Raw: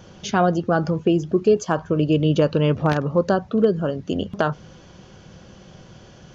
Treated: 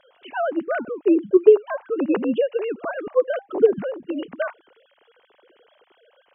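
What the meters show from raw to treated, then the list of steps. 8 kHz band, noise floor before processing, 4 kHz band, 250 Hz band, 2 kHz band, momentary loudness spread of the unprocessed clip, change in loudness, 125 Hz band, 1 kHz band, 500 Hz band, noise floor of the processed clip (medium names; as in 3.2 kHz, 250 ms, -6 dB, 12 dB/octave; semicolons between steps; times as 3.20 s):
no reading, -47 dBFS, under -10 dB, -3.0 dB, -2.5 dB, 6 LU, -1.0 dB, under -20 dB, -7.0 dB, +1.5 dB, -63 dBFS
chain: formants replaced by sine waves; trim -1 dB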